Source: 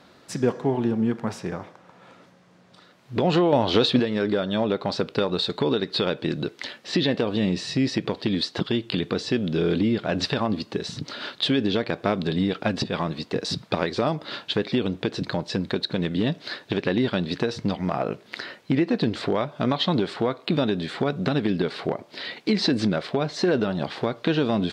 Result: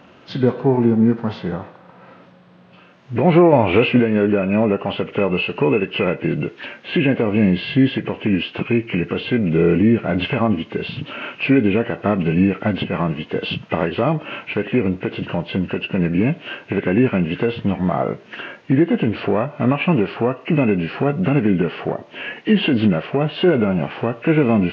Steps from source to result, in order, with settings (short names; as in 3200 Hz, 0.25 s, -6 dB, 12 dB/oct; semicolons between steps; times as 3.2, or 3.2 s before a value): nonlinear frequency compression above 1300 Hz 1.5:1; harmonic-percussive split harmonic +7 dB; gain +2 dB